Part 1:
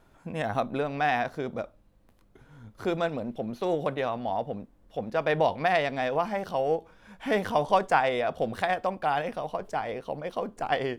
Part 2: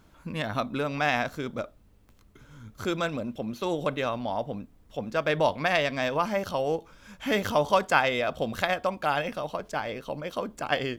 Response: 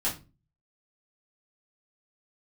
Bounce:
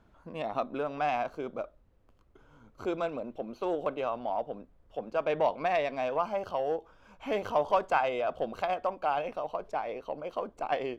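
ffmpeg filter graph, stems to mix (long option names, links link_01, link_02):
-filter_complex "[0:a]asoftclip=type=tanh:threshold=-19.5dB,volume=-6dB[link_01];[1:a]volume=-1,volume=-6dB[link_02];[link_01][link_02]amix=inputs=2:normalize=0,lowpass=frequency=1900:poles=1"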